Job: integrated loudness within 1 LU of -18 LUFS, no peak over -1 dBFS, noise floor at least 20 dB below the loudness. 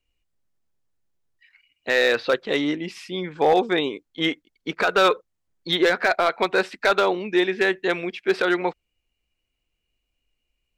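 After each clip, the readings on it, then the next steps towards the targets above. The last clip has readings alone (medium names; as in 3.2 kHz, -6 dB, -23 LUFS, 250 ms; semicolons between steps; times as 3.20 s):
clipped samples 0.2%; clipping level -10.5 dBFS; loudness -22.0 LUFS; peak level -10.5 dBFS; loudness target -18.0 LUFS
-> clip repair -10.5 dBFS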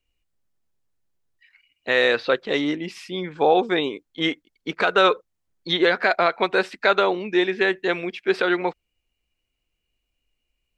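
clipped samples 0.0%; loudness -22.0 LUFS; peak level -3.5 dBFS; loudness target -18.0 LUFS
-> trim +4 dB; peak limiter -1 dBFS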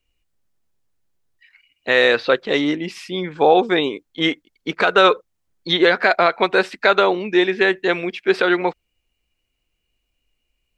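loudness -18.0 LUFS; peak level -1.0 dBFS; noise floor -74 dBFS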